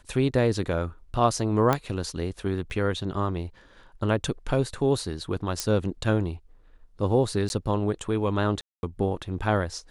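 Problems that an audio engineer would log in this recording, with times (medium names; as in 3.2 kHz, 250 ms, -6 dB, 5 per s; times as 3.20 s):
1.73 s: pop -9 dBFS
2.70 s: dropout 3.3 ms
5.60 s: pop -10 dBFS
7.49–7.50 s: dropout 11 ms
8.61–8.83 s: dropout 221 ms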